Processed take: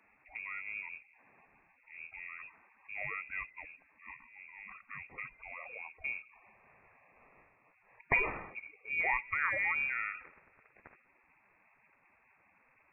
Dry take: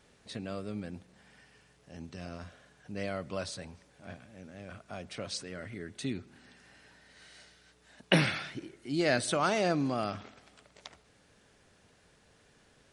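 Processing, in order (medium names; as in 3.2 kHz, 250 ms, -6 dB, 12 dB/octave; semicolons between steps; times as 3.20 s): coarse spectral quantiser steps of 30 dB; frequency inversion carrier 2.6 kHz; trim -3.5 dB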